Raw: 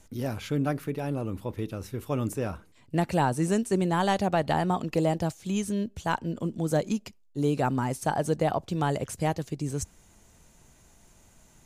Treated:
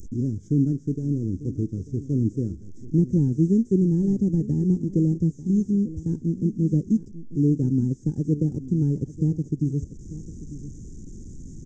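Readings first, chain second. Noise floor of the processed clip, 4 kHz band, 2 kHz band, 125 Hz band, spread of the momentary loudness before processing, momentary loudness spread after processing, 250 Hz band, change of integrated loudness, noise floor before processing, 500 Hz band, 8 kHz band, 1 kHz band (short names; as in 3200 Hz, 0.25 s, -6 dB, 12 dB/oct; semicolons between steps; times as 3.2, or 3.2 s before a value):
-44 dBFS, under -20 dB, under -35 dB, +8.0 dB, 9 LU, 17 LU, +7.5 dB, +4.5 dB, -59 dBFS, -3.5 dB, under -10 dB, under -30 dB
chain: delta modulation 32 kbps, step -36.5 dBFS; transient shaper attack +1 dB, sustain -6 dB; inverse Chebyshev band-stop 630–4500 Hz, stop band 40 dB; echo 0.893 s -15.5 dB; gain +7.5 dB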